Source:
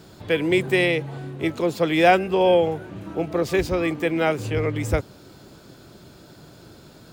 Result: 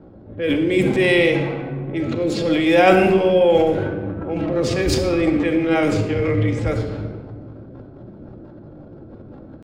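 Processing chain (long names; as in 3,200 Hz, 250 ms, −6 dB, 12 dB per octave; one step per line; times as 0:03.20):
low-pass that shuts in the quiet parts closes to 690 Hz, open at −16.5 dBFS
rotating-speaker cabinet horn 0.8 Hz, later 8 Hz, at 0:02.22
in parallel at +1 dB: downward compressor, threshold −31 dBFS, peak gain reduction 18.5 dB
on the sum: transient designer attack −6 dB, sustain +10 dB
tempo change 0.74×
on a send at −2.5 dB: convolution reverb RT60 1.4 s, pre-delay 4 ms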